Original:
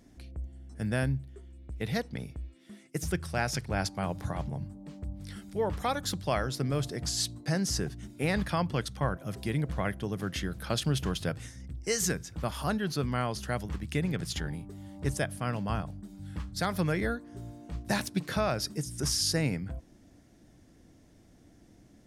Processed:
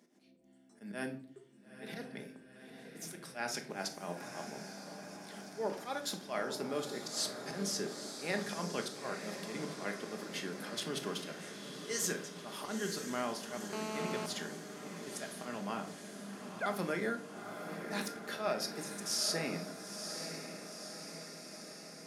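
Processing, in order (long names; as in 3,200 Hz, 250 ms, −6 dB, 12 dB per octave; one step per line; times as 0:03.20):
0:16.16–0:16.66: three sine waves on the formant tracks
high-pass filter 230 Hz 24 dB per octave
volume swells 103 ms
feedback delay with all-pass diffusion 926 ms, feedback 65%, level −8 dB
rectangular room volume 520 cubic metres, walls furnished, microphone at 1.3 metres
0:13.73–0:14.26: phone interference −35 dBFS
level −5.5 dB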